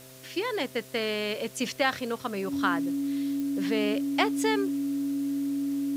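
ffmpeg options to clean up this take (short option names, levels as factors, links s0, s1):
-af "adeclick=t=4,bandreject=f=130.3:t=h:w=4,bandreject=f=260.6:t=h:w=4,bandreject=f=390.9:t=h:w=4,bandreject=f=521.2:t=h:w=4,bandreject=f=651.5:t=h:w=4,bandreject=f=280:w=30,afftdn=nr=30:nf=-45"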